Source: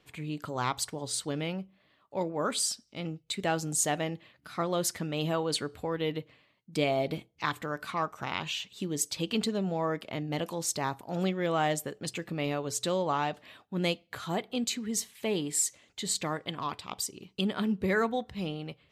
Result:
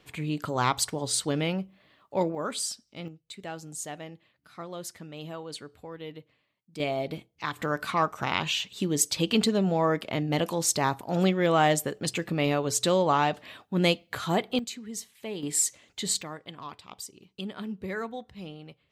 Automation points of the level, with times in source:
+5.5 dB
from 0:02.35 −2 dB
from 0:03.08 −9 dB
from 0:06.80 −1.5 dB
from 0:07.59 +6 dB
from 0:14.59 −5.5 dB
from 0:15.43 +3 dB
from 0:16.22 −6.5 dB

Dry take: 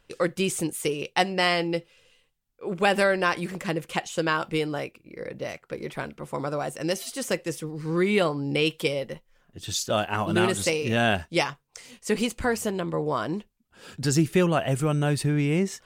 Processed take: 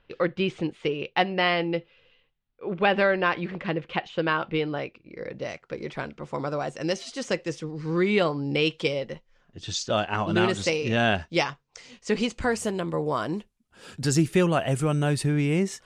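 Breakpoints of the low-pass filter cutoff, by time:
low-pass filter 24 dB per octave
0:04.54 3,700 Hz
0:05.43 6,400 Hz
0:12.27 6,400 Hz
0:12.76 12,000 Hz

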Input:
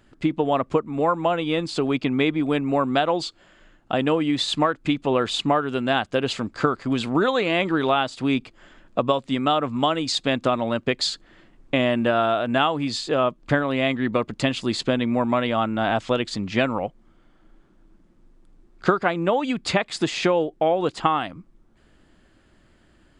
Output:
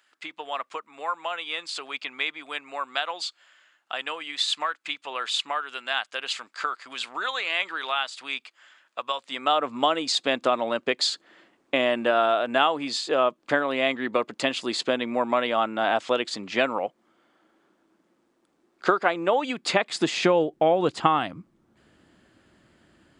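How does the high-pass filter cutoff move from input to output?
0:09.07 1,300 Hz
0:09.71 370 Hz
0:19.51 370 Hz
0:20.62 97 Hz

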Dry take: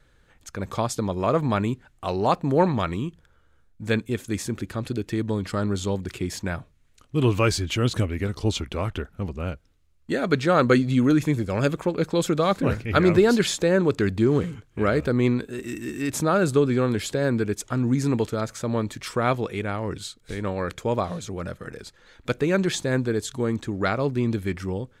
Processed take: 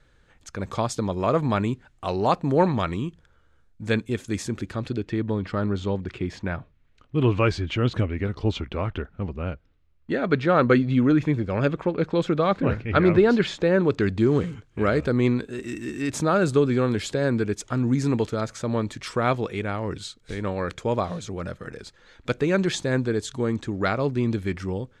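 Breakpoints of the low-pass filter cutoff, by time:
0:04.60 8,300 Hz
0:05.22 3,100 Hz
0:13.58 3,100 Hz
0:14.30 7,700 Hz

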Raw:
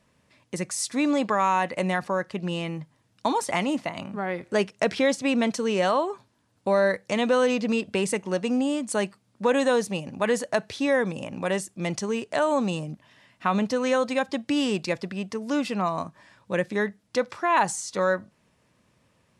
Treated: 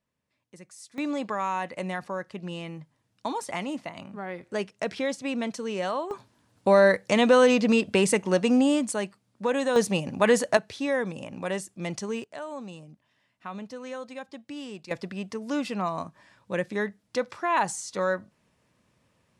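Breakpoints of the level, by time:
−18 dB
from 0:00.98 −6.5 dB
from 0:06.11 +3.5 dB
from 0:08.91 −4 dB
from 0:09.76 +3.5 dB
from 0:10.57 −4 dB
from 0:12.24 −14 dB
from 0:14.91 −3 dB

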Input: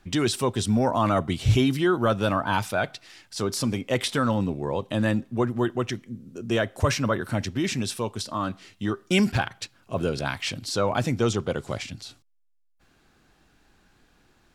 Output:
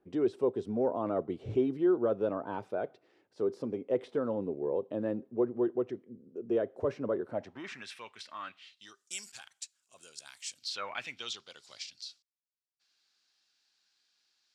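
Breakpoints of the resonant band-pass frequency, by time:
resonant band-pass, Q 2.8
0:07.25 430 Hz
0:07.91 2,100 Hz
0:08.46 2,100 Hz
0:09.05 7,600 Hz
0:10.56 7,600 Hz
0:10.83 1,800 Hz
0:11.47 4,800 Hz

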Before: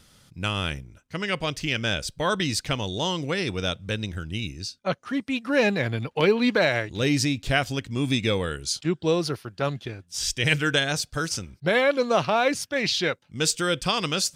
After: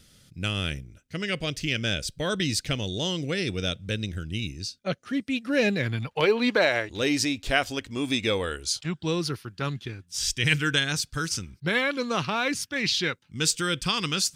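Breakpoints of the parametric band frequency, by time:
parametric band −12 dB 0.88 octaves
0:05.76 960 Hz
0:06.38 140 Hz
0:08.60 140 Hz
0:09.12 630 Hz

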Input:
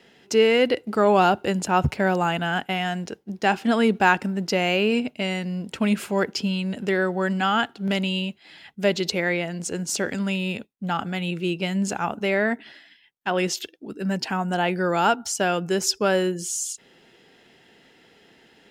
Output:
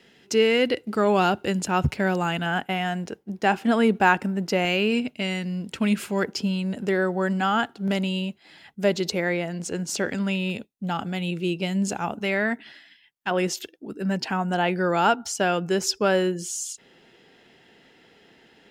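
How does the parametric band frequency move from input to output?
parametric band −4.5 dB 1.5 octaves
760 Hz
from 0:02.46 4,600 Hz
from 0:04.65 700 Hz
from 0:06.24 2,900 Hz
from 0:09.52 10,000 Hz
from 0:10.50 1,500 Hz
from 0:12.21 480 Hz
from 0:13.31 3,600 Hz
from 0:14.03 11,000 Hz

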